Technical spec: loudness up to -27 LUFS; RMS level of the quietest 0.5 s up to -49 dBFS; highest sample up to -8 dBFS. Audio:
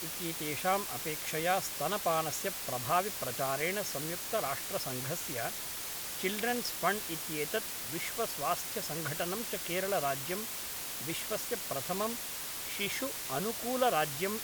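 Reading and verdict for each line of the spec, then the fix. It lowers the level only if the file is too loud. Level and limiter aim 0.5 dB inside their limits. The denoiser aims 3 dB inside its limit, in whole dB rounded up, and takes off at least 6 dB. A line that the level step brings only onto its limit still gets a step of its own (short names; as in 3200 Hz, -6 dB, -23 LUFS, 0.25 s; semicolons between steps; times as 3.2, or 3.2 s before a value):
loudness -33.5 LUFS: OK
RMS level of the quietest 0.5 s -40 dBFS: fail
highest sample -14.5 dBFS: OK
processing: denoiser 12 dB, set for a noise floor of -40 dBFS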